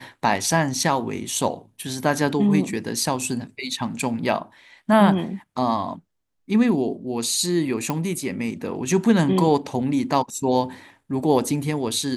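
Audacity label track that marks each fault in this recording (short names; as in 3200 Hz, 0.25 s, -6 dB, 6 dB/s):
7.900000	7.900000	pop -11 dBFS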